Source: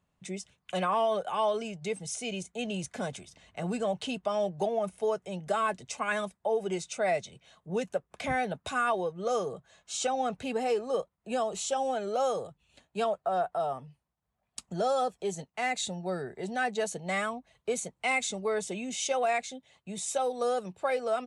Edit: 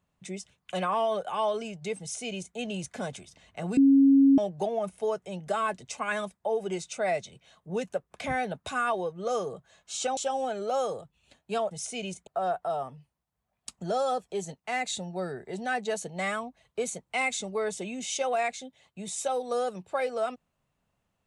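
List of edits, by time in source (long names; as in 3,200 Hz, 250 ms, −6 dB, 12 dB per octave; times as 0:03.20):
0:02.00–0:02.56: duplicate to 0:13.17
0:03.77–0:04.38: beep over 274 Hz −15 dBFS
0:10.17–0:11.63: remove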